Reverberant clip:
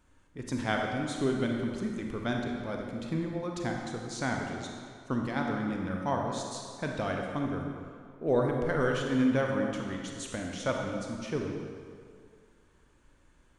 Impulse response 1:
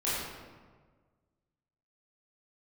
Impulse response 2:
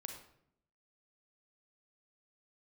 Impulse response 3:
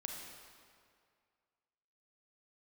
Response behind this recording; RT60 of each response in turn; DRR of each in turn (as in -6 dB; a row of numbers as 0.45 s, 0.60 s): 3; 1.5 s, 0.70 s, 2.1 s; -10.5 dB, 3.5 dB, 0.5 dB